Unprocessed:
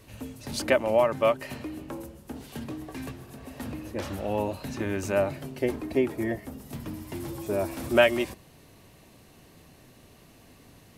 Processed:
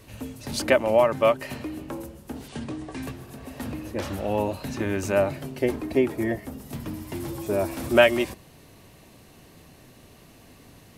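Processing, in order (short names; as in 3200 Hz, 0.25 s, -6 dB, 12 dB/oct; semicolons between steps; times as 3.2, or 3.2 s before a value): 2.48–3.03 steep low-pass 10000 Hz 96 dB/oct; gain +3 dB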